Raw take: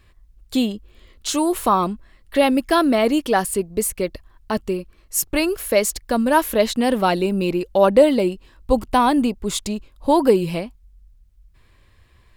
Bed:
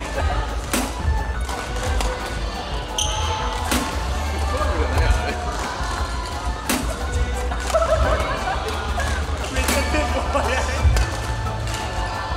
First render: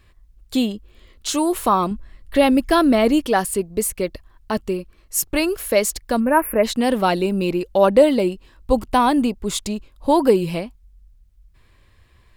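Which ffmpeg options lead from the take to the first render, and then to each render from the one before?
-filter_complex "[0:a]asettb=1/sr,asplit=3[a][b][c];[a]atrim=end=1.914[d];[b]atrim=start=1.91:end=3.26,asetpts=PTS-STARTPTS,afade=t=in:d=0.004:c=qsin,afade=t=out:st=1.346:d=0.004:c=qsin,lowshelf=f=160:g=9.5[e];[c]atrim=start=3.256[f];[d][e]acrossfade=d=0.004:c1=hsin:c2=qsin[g];[g][f]acrossfade=d=0.004:c1=qsin:c2=hsin,asplit=3[h][i][j];[h]afade=t=out:st=6.19:d=0.02[k];[i]asuperstop=centerf=5300:order=20:qfactor=0.74,afade=t=in:st=6.19:d=0.02,afade=t=out:st=6.63:d=0.02[l];[j]afade=t=in:st=6.63:d=0.02[m];[k][l][m]amix=inputs=3:normalize=0"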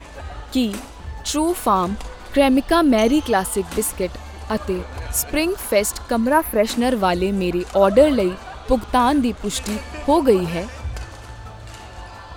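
-filter_complex "[1:a]volume=-12dB[a];[0:a][a]amix=inputs=2:normalize=0"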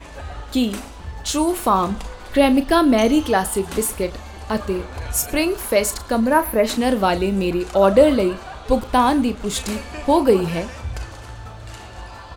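-filter_complex "[0:a]asplit=2[a][b];[b]adelay=36,volume=-12dB[c];[a][c]amix=inputs=2:normalize=0,aecho=1:1:114:0.0708"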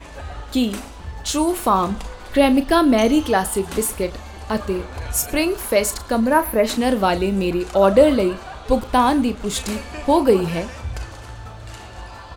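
-af anull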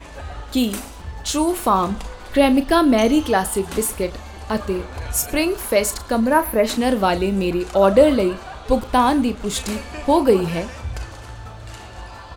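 -filter_complex "[0:a]asettb=1/sr,asplit=3[a][b][c];[a]atrim=end=0.574[d];[b]atrim=start=0.57:end=1.02,asetpts=PTS-STARTPTS,afade=t=in:d=0.004:c=qsin,afade=t=out:st=0.446:d=0.004:c=qsin,highshelf=f=8.9k:g=11.5[e];[c]atrim=start=1.016[f];[d][e]acrossfade=d=0.004:c1=hsin:c2=qsin[g];[g][f]acrossfade=d=0.004:c1=qsin:c2=hsin"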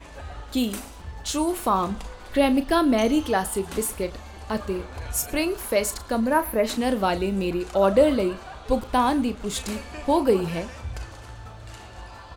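-af "volume=-5dB"

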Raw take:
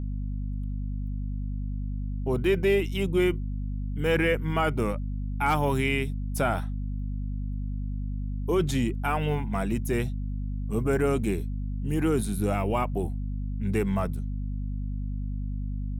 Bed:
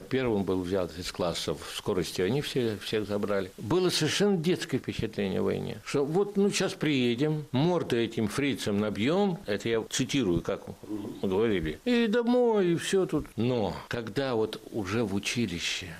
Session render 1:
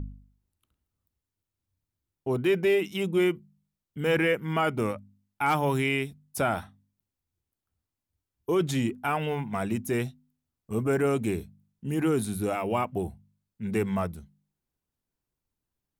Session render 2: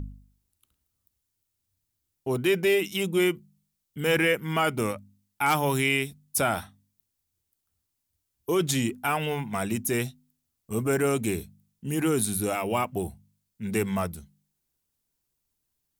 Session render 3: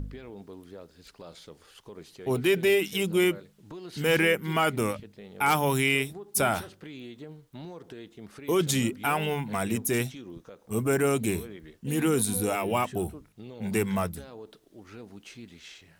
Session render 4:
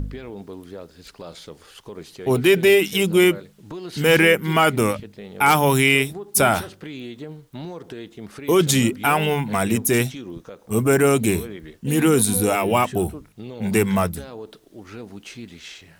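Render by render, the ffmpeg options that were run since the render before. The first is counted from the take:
-af "bandreject=f=50:t=h:w=4,bandreject=f=100:t=h:w=4,bandreject=f=150:t=h:w=4,bandreject=f=200:t=h:w=4,bandreject=f=250:t=h:w=4"
-af "highshelf=f=3.3k:g=11.5"
-filter_complex "[1:a]volume=-16.5dB[a];[0:a][a]amix=inputs=2:normalize=0"
-af "volume=8dB,alimiter=limit=-2dB:level=0:latency=1"

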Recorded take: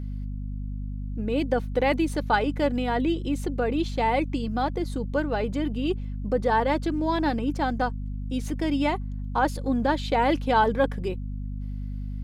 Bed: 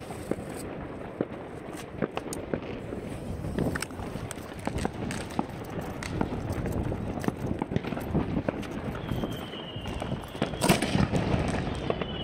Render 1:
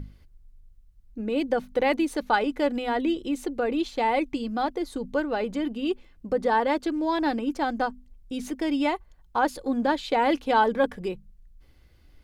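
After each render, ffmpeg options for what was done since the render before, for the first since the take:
-af "bandreject=f=50:t=h:w=6,bandreject=f=100:t=h:w=6,bandreject=f=150:t=h:w=6,bandreject=f=200:t=h:w=6,bandreject=f=250:t=h:w=6"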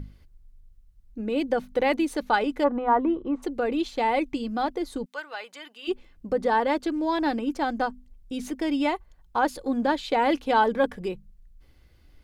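-filter_complex "[0:a]asplit=3[a][b][c];[a]afade=t=out:st=2.63:d=0.02[d];[b]lowpass=f=1.1k:t=q:w=4.6,afade=t=in:st=2.63:d=0.02,afade=t=out:st=3.42:d=0.02[e];[c]afade=t=in:st=3.42:d=0.02[f];[d][e][f]amix=inputs=3:normalize=0,asplit=3[g][h][i];[g]afade=t=out:st=5.04:d=0.02[j];[h]highpass=1.2k,afade=t=in:st=5.04:d=0.02,afade=t=out:st=5.87:d=0.02[k];[i]afade=t=in:st=5.87:d=0.02[l];[j][k][l]amix=inputs=3:normalize=0"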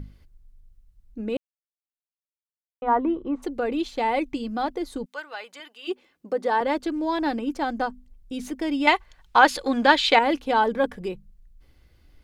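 -filter_complex "[0:a]asettb=1/sr,asplit=3[a][b][c];[a]atrim=end=5.604[d];[b]atrim=start=5.6:end=6.61,asetpts=PTS-STARTPTS,afade=t=in:d=0.004:c=qsin,afade=t=out:st=1.006:d=0.004:c=qsin,highpass=290[e];[c]atrim=start=6.606[f];[d][e]acrossfade=d=0.004:c1=hsin:c2=qsin[g];[g][f]acrossfade=d=0.004:c1=qsin:c2=hsin,asettb=1/sr,asplit=3[h][i][j];[h]atrim=end=8.874[k];[i]atrim=start=8.87:end=10.19,asetpts=PTS-STARTPTS,afade=t=in:d=0.004:c=qsin,afade=t=out:st=1.316:d=0.004:c=qsin,equalizer=f=2.8k:w=0.32:g=15[l];[j]atrim=start=10.186[m];[k][l]acrossfade=d=0.004:c1=hsin:c2=qsin[n];[n][m]acrossfade=d=0.004:c1=qsin:c2=hsin,asplit=3[o][p][q];[o]atrim=end=1.37,asetpts=PTS-STARTPTS,afade=t=out:st=1.366:d=0.004:c=hsin[r];[p]atrim=start=1.37:end=2.82,asetpts=PTS-STARTPTS,volume=0[s];[q]atrim=start=2.82,asetpts=PTS-STARTPTS,afade=t=in:d=0.004:c=hsin[t];[r][s][t]concat=n=3:v=0:a=1"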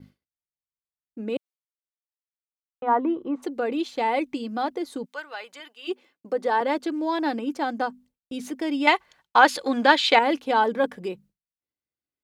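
-af "highpass=180,agate=range=-33dB:threshold=-47dB:ratio=3:detection=peak"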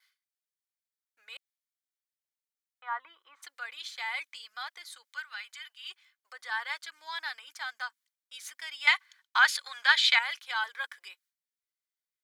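-af "highpass=f=1.4k:w=0.5412,highpass=f=1.4k:w=1.3066,bandreject=f=2.7k:w=9.3"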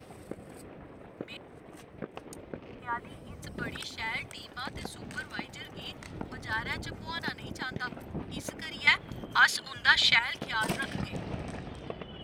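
-filter_complex "[1:a]volume=-10.5dB[a];[0:a][a]amix=inputs=2:normalize=0"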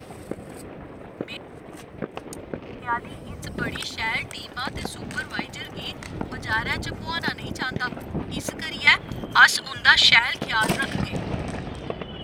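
-af "volume=8.5dB,alimiter=limit=-2dB:level=0:latency=1"

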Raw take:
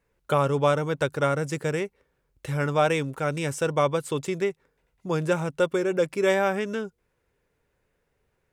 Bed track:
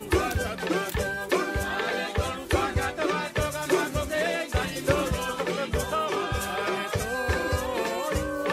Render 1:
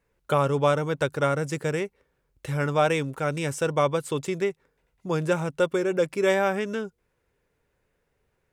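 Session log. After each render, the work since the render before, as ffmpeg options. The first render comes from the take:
-af anull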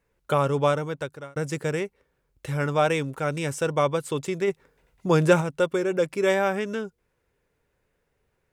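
-filter_complex "[0:a]asplit=3[a][b][c];[a]afade=t=out:st=4.47:d=0.02[d];[b]acontrast=68,afade=t=in:st=4.47:d=0.02,afade=t=out:st=5.4:d=0.02[e];[c]afade=t=in:st=5.4:d=0.02[f];[d][e][f]amix=inputs=3:normalize=0,asplit=2[g][h];[g]atrim=end=1.36,asetpts=PTS-STARTPTS,afade=t=out:st=0.66:d=0.7[i];[h]atrim=start=1.36,asetpts=PTS-STARTPTS,afade=t=in:d=0.004:c=hsin[j];[i][j]concat=n=2:v=0:a=1"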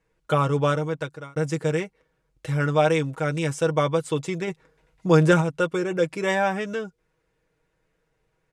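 -af "lowpass=9.1k,aecho=1:1:6.3:0.6"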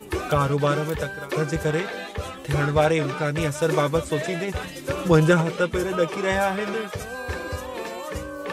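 -filter_complex "[1:a]volume=-4dB[a];[0:a][a]amix=inputs=2:normalize=0"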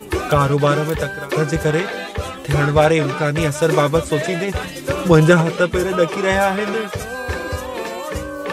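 -af "volume=6dB,alimiter=limit=-1dB:level=0:latency=1"

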